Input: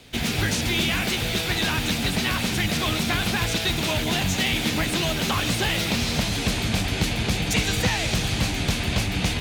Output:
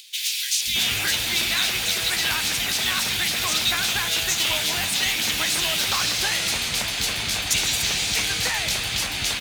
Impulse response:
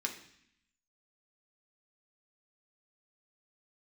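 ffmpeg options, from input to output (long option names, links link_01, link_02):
-filter_complex "[0:a]acompressor=mode=upward:threshold=-43dB:ratio=2.5,tiltshelf=frequency=890:gain=-9,acrusher=bits=5:mode=log:mix=0:aa=0.000001,acrossover=split=210|2500[link_01][link_02][link_03];[link_01]adelay=530[link_04];[link_02]adelay=620[link_05];[link_04][link_05][link_03]amix=inputs=3:normalize=0,volume=-2dB"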